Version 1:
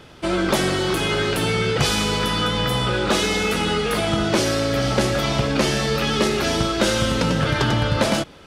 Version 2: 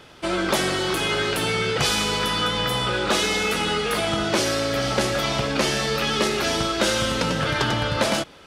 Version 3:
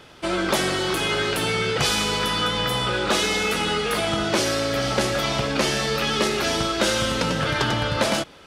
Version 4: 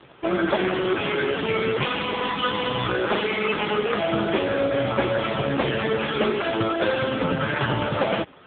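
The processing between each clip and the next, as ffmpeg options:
-af "lowshelf=f=350:g=-7"
-af anull
-filter_complex "[0:a]asplit=2[a][b];[b]acrusher=samples=8:mix=1:aa=0.000001,volume=-4dB[c];[a][c]amix=inputs=2:normalize=0" -ar 8000 -c:a libopencore_amrnb -b:a 5150

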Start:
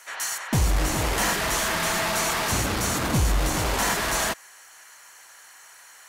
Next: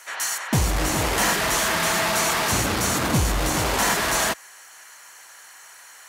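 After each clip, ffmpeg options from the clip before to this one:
-af "highpass=f=77:p=1,volume=3dB"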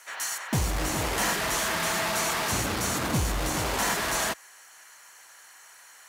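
-af "acrusher=bits=7:mode=log:mix=0:aa=0.000001,volume=-5.5dB"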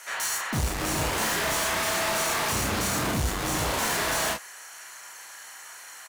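-af "asoftclip=type=tanh:threshold=-31.5dB,aecho=1:1:32|46:0.668|0.335,volume=5.5dB"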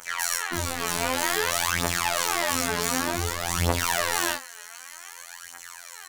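-af "acrusher=bits=8:mix=0:aa=0.000001,aphaser=in_gain=1:out_gain=1:delay=4.9:decay=0.8:speed=0.54:type=triangular,afftfilt=real='hypot(re,im)*cos(PI*b)':imag='0':win_size=2048:overlap=0.75"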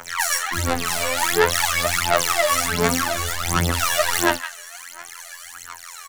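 -filter_complex "[0:a]aphaser=in_gain=1:out_gain=1:delay=1.8:decay=0.8:speed=1.4:type=sinusoidal,acrossover=split=170|1100|4200[a][b][c][d];[a]asoftclip=type=tanh:threshold=-23.5dB[e];[c]aecho=1:1:164:0.422[f];[e][b][f][d]amix=inputs=4:normalize=0"

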